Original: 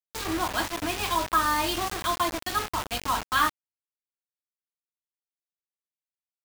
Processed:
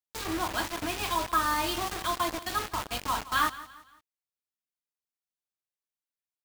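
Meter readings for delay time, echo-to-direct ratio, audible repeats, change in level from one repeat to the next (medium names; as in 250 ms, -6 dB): 171 ms, -16.5 dB, 3, -8.0 dB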